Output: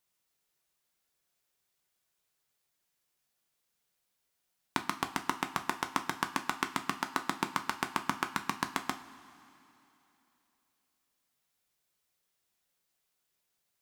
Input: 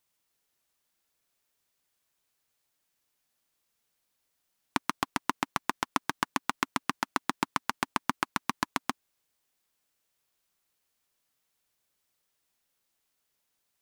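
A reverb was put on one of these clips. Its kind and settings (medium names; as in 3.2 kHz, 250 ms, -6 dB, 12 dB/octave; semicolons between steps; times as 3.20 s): two-slope reverb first 0.31 s, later 3.1 s, from -17 dB, DRR 6 dB; trim -3 dB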